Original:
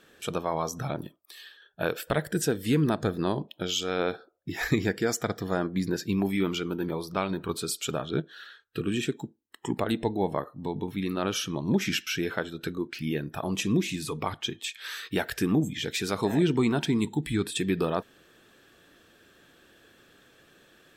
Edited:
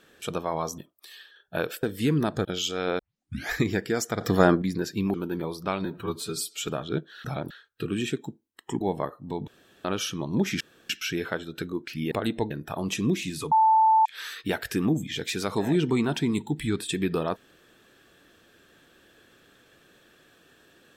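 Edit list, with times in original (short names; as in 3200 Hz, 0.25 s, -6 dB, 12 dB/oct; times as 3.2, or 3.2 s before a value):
0.78–1.04 move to 8.46
2.09–2.49 cut
3.11–3.57 cut
4.11 tape start 0.52 s
5.33–5.74 gain +9.5 dB
6.26–6.63 cut
7.34–7.89 stretch 1.5×
9.76–10.15 move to 13.17
10.82–11.19 room tone
11.95 insert room tone 0.29 s
14.18–14.72 bleep 882 Hz -15.5 dBFS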